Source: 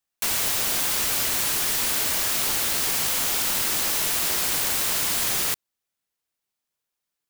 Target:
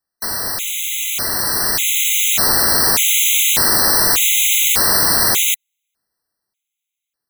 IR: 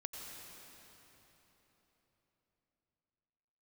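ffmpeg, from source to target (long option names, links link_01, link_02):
-af "dynaudnorm=framelen=270:gausssize=13:maxgain=11.5dB,afftfilt=real='re*gt(sin(2*PI*0.84*pts/sr)*(1-2*mod(floor(b*sr/1024/2000),2)),0)':imag='im*gt(sin(2*PI*0.84*pts/sr)*(1-2*mod(floor(b*sr/1024/2000),2)),0)':win_size=1024:overlap=0.75,volume=4.5dB"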